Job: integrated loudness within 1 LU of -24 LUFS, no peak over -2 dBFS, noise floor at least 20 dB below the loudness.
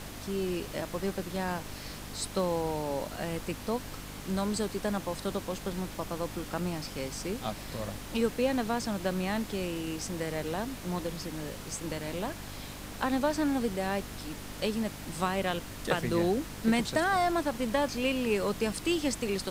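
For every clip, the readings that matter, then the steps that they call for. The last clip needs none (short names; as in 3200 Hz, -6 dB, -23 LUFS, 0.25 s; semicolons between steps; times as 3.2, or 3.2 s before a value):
hum 50 Hz; harmonics up to 300 Hz; hum level -45 dBFS; noise floor -43 dBFS; noise floor target -53 dBFS; loudness -32.5 LUFS; peak -14.5 dBFS; loudness target -24.0 LUFS
-> de-hum 50 Hz, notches 6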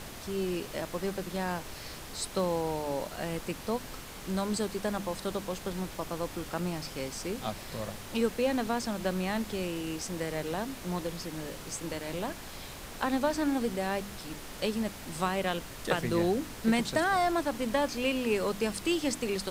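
hum none; noise floor -44 dBFS; noise floor target -53 dBFS
-> noise print and reduce 9 dB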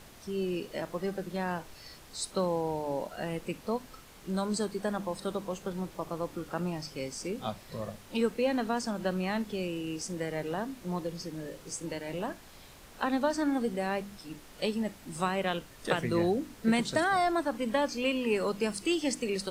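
noise floor -52 dBFS; noise floor target -53 dBFS
-> noise print and reduce 6 dB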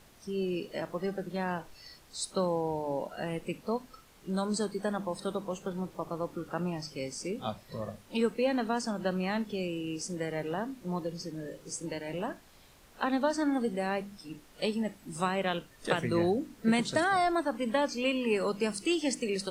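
noise floor -58 dBFS; loudness -32.5 LUFS; peak -15.0 dBFS; loudness target -24.0 LUFS
-> gain +8.5 dB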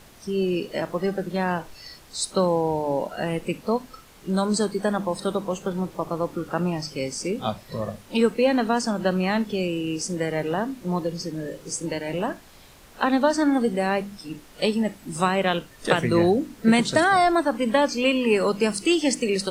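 loudness -24.0 LUFS; peak -6.5 dBFS; noise floor -49 dBFS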